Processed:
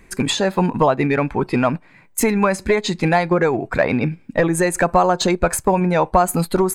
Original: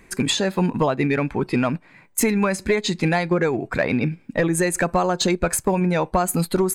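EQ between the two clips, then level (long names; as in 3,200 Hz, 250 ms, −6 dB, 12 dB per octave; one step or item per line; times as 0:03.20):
dynamic equaliser 850 Hz, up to +7 dB, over −33 dBFS, Q 0.77
low-shelf EQ 82 Hz +6.5 dB
0.0 dB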